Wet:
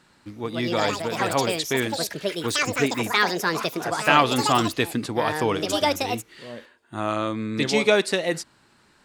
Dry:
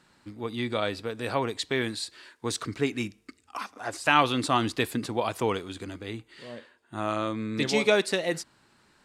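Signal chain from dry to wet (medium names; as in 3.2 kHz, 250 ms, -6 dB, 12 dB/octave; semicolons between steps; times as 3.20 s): ever faster or slower copies 259 ms, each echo +6 st, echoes 2; trim +3.5 dB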